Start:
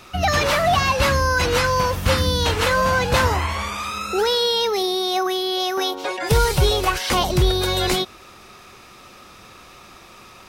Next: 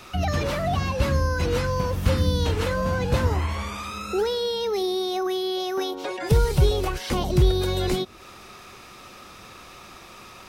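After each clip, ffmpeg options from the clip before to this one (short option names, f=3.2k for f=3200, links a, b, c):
-filter_complex "[0:a]acrossover=split=460[a][b];[b]acompressor=threshold=-35dB:ratio=2.5[c];[a][c]amix=inputs=2:normalize=0"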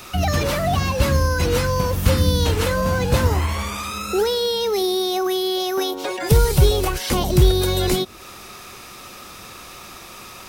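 -filter_complex "[0:a]highshelf=f=7.3k:g=11,asplit=2[a][b];[b]acrusher=bits=3:mode=log:mix=0:aa=0.000001,volume=-9dB[c];[a][c]amix=inputs=2:normalize=0,volume=1.5dB"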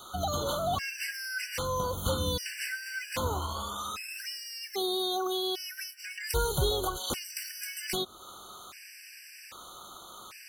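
-af "lowshelf=f=390:g=-11.5,afftfilt=real='re*gt(sin(2*PI*0.63*pts/sr)*(1-2*mod(floor(b*sr/1024/1500),2)),0)':imag='im*gt(sin(2*PI*0.63*pts/sr)*(1-2*mod(floor(b*sr/1024/1500),2)),0)':win_size=1024:overlap=0.75,volume=-5dB"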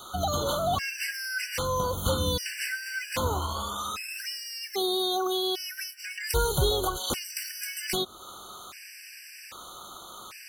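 -af "acontrast=44,volume=-2.5dB"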